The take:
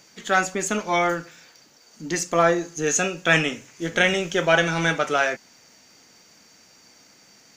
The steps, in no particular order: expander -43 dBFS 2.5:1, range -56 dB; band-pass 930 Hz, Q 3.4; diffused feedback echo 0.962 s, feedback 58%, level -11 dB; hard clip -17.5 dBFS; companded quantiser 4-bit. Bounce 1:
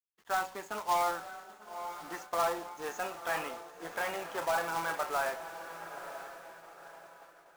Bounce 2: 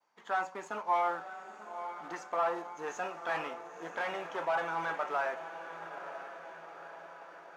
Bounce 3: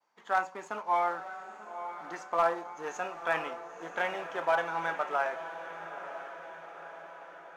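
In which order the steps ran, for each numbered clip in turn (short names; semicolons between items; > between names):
hard clip > band-pass > companded quantiser > diffused feedback echo > expander; hard clip > diffused feedback echo > companded quantiser > expander > band-pass; companded quantiser > expander > band-pass > hard clip > diffused feedback echo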